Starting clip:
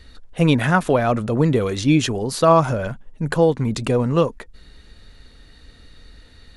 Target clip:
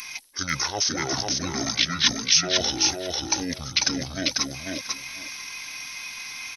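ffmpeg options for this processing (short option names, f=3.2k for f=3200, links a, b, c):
-filter_complex "[0:a]highpass=f=74:p=1,aemphasis=mode=production:type=riaa,areverse,acompressor=threshold=-30dB:ratio=6,areverse,asetrate=24750,aresample=44100,atempo=1.7818,crystalizer=i=8:c=0,asplit=2[a][b];[b]aecho=0:1:495|990|1485:0.708|0.12|0.0205[c];[a][c]amix=inputs=2:normalize=0"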